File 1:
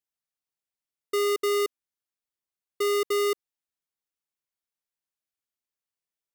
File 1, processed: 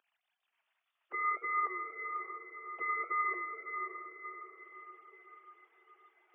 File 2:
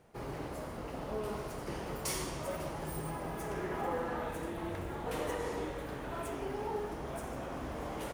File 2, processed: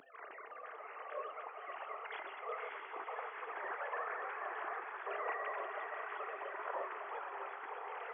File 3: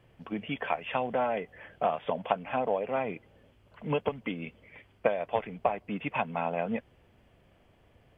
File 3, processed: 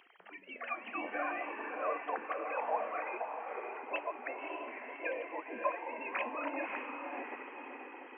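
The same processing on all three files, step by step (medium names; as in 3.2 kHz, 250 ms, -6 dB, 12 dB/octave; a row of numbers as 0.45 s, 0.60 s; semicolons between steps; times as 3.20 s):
formants replaced by sine waves; upward compressor, threshold -44 dBFS; flange 0.62 Hz, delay 7.1 ms, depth 6.5 ms, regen +83%; three-band isolator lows -23 dB, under 260 Hz, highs -21 dB, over 2.7 kHz; on a send: echo that smears into a reverb 576 ms, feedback 52%, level -5 dB; on the sum: spectral gate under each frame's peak -10 dB weak; trim +7.5 dB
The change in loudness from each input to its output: -10.0 LU, -4.5 LU, -7.0 LU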